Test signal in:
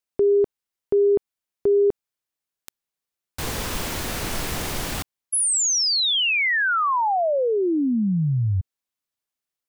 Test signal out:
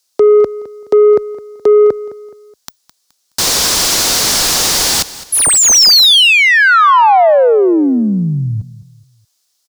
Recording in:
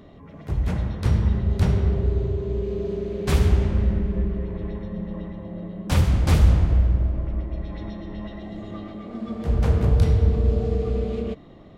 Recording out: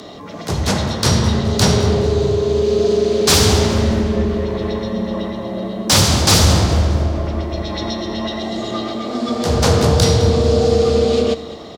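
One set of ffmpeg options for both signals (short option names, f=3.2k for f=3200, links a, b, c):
-filter_complex "[0:a]highshelf=f=3.4k:t=q:w=1.5:g=13.5,afreqshift=15,asplit=2[a][b];[b]highpass=f=720:p=1,volume=23dB,asoftclip=type=tanh:threshold=0dB[c];[a][c]amix=inputs=2:normalize=0,lowpass=f=3k:p=1,volume=-6dB,asplit=2[d][e];[e]aecho=0:1:211|422|633:0.141|0.0537|0.0204[f];[d][f]amix=inputs=2:normalize=0,volume=2dB"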